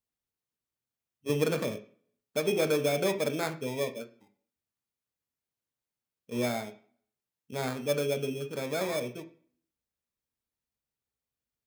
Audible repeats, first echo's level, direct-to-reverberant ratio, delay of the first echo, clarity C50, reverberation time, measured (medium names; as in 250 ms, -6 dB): no echo, no echo, 6.5 dB, no echo, 14.0 dB, 0.45 s